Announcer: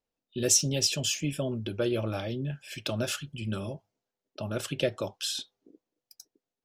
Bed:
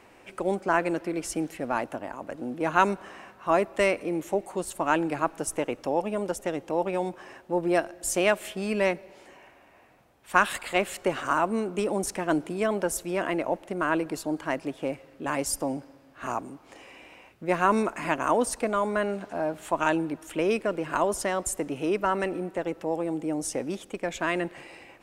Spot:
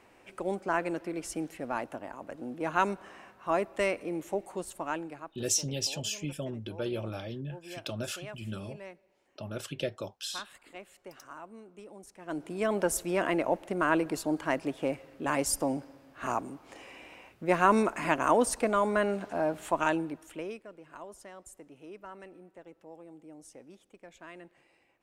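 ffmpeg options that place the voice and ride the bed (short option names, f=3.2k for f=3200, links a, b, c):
-filter_complex "[0:a]adelay=5000,volume=-5.5dB[a];[1:a]volume=15.5dB,afade=t=out:st=4.55:d=0.77:silence=0.158489,afade=t=in:st=12.18:d=0.67:silence=0.0891251,afade=t=out:st=19.57:d=1.04:silence=0.1[b];[a][b]amix=inputs=2:normalize=0"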